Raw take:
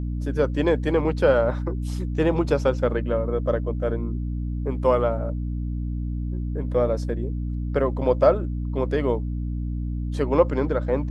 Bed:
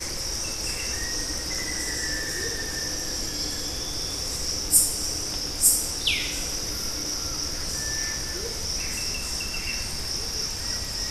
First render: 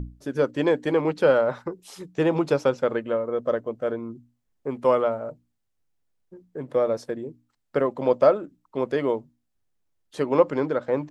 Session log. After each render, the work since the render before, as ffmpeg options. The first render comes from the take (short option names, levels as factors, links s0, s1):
-af "bandreject=f=60:t=h:w=6,bandreject=f=120:t=h:w=6,bandreject=f=180:t=h:w=6,bandreject=f=240:t=h:w=6,bandreject=f=300:t=h:w=6"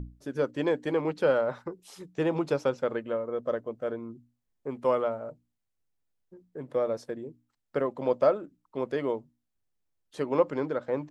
-af "volume=0.531"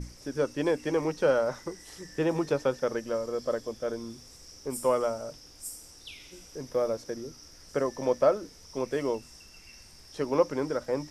-filter_complex "[1:a]volume=0.0841[s0];[0:a][s0]amix=inputs=2:normalize=0"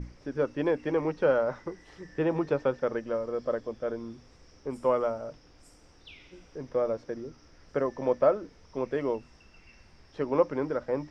-af "lowpass=2600"